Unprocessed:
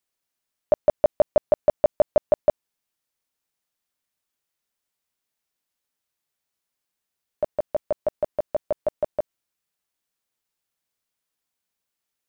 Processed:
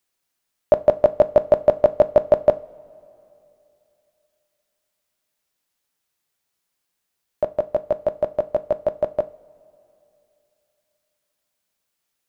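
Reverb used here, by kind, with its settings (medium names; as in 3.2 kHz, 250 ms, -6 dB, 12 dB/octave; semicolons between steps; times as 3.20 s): two-slope reverb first 0.33 s, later 3 s, from -20 dB, DRR 12 dB; trim +5 dB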